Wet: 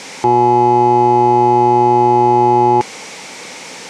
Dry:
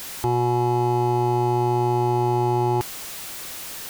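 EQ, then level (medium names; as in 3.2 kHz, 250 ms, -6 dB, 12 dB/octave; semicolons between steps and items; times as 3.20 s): cabinet simulation 130–8000 Hz, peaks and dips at 180 Hz +8 dB, 250 Hz +9 dB, 490 Hz +3 dB, 870 Hz +9 dB, 2.2 kHz +10 dB, 5.7 kHz +4 dB; peaking EQ 470 Hz +8 dB 0.68 oct; +3.5 dB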